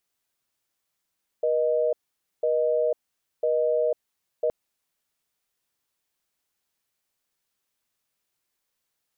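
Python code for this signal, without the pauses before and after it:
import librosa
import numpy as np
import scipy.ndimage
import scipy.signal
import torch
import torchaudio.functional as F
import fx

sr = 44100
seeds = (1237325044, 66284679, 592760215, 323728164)

y = fx.call_progress(sr, length_s=3.07, kind='busy tone', level_db=-23.0)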